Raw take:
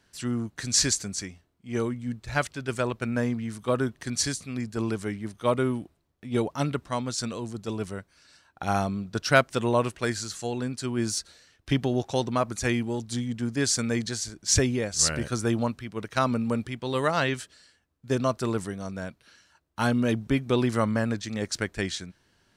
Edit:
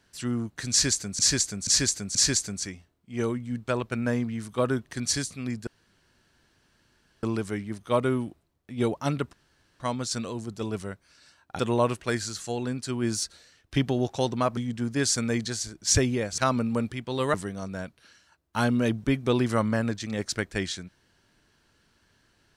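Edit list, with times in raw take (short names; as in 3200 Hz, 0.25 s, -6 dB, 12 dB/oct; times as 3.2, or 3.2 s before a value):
0.71–1.19 loop, 4 plays
2.24–2.78 cut
4.77 insert room tone 1.56 s
6.87 insert room tone 0.47 s
8.66–9.54 cut
12.52–13.18 cut
14.99–16.13 cut
17.09–18.57 cut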